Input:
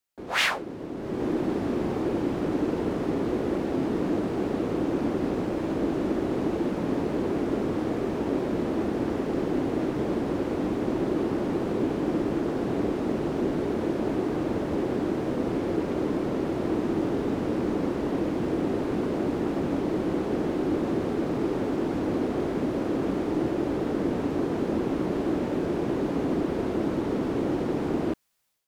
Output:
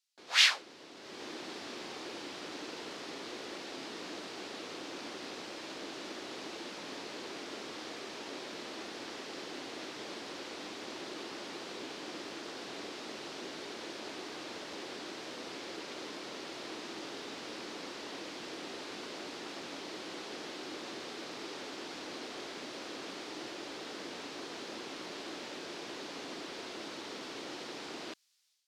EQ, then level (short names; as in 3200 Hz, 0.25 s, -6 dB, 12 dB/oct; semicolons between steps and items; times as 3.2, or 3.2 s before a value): band-pass 4700 Hz, Q 1.5; +7.0 dB